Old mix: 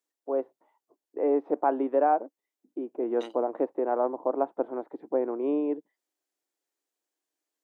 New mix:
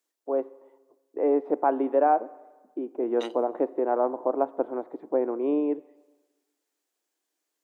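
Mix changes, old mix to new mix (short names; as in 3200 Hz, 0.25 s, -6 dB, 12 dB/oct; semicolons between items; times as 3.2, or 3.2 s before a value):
second voice +5.5 dB; reverb: on, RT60 1.3 s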